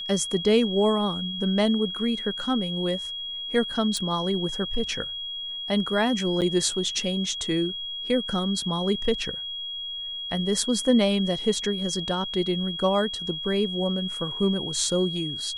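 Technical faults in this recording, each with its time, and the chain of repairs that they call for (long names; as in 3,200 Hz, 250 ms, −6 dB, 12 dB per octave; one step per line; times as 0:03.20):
whistle 3,300 Hz −31 dBFS
0:03.97: click
0:06.41–0:06.42: drop-out 8.1 ms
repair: click removal
notch filter 3,300 Hz, Q 30
repair the gap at 0:06.41, 8.1 ms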